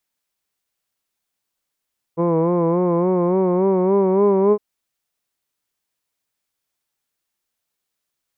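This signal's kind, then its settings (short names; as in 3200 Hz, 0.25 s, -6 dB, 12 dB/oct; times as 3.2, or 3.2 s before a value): formant-synthesis vowel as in hood, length 2.41 s, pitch 165 Hz, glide +3.5 st, vibrato 3.5 Hz, vibrato depth 0.7 st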